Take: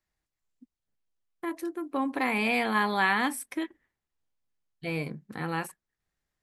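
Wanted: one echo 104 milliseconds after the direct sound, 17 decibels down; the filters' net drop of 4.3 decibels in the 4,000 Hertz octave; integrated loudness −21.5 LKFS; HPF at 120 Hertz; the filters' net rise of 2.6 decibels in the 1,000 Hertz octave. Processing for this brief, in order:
high-pass filter 120 Hz
parametric band 1,000 Hz +3.5 dB
parametric band 4,000 Hz −6 dB
single-tap delay 104 ms −17 dB
level +7.5 dB

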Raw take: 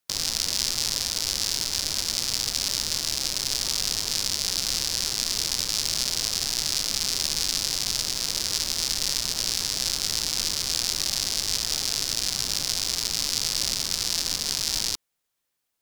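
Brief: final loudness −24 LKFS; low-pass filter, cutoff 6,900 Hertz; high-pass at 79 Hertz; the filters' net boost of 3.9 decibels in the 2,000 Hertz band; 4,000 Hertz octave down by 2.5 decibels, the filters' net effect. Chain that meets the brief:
high-pass filter 79 Hz
low-pass filter 6,900 Hz
parametric band 2,000 Hz +6 dB
parametric band 4,000 Hz −3.5 dB
level +3 dB

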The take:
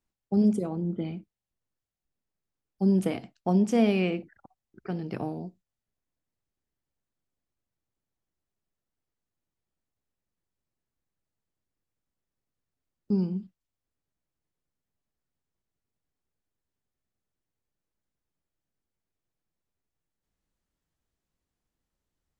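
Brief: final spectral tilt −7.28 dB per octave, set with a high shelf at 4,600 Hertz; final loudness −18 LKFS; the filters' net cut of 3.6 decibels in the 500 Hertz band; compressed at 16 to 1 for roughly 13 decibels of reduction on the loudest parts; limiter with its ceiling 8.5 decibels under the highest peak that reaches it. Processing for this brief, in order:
parametric band 500 Hz −5 dB
high-shelf EQ 4,600 Hz +7.5 dB
downward compressor 16 to 1, threshold −32 dBFS
level +22.5 dB
brickwall limiter −8 dBFS

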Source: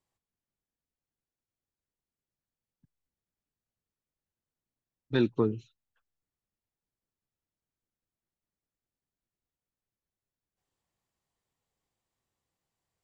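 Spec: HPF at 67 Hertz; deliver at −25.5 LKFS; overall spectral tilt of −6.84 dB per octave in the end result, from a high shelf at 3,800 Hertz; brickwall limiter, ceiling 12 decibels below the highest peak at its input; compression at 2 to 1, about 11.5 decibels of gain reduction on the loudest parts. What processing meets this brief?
high-pass filter 67 Hz
high-shelf EQ 3,800 Hz +5 dB
downward compressor 2 to 1, threshold −42 dBFS
level +22.5 dB
brickwall limiter −12 dBFS

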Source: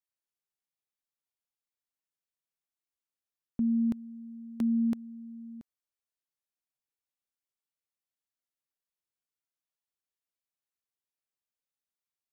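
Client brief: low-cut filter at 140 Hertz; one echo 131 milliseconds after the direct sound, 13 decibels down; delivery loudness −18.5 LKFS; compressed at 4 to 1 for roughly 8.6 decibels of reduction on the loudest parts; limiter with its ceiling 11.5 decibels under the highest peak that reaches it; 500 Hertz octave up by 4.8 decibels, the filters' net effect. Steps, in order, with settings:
high-pass filter 140 Hz
parametric band 500 Hz +6.5 dB
downward compressor 4 to 1, threshold −35 dBFS
brickwall limiter −36 dBFS
single-tap delay 131 ms −13 dB
level +24 dB

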